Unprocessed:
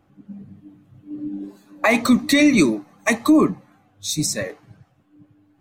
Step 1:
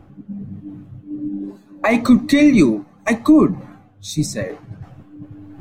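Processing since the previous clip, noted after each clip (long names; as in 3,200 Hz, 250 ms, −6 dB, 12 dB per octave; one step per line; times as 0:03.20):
spectral tilt −2 dB per octave
reversed playback
upward compression, threshold −25 dBFS
reversed playback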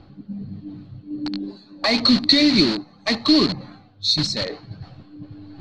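in parallel at −4 dB: wrap-around overflow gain 18.5 dB
on the sum: low-pass with resonance 4,300 Hz, resonance Q 16
level −6 dB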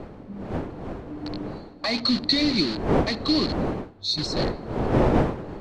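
wind on the microphone 450 Hz −21 dBFS
level −6.5 dB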